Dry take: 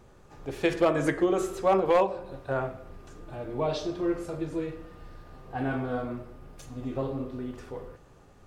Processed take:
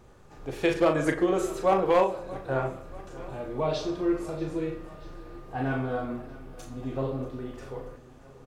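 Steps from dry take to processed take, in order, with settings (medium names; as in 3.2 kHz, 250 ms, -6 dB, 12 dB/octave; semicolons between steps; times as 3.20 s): doubling 38 ms -6.5 dB; on a send: feedback delay 635 ms, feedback 59%, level -19 dB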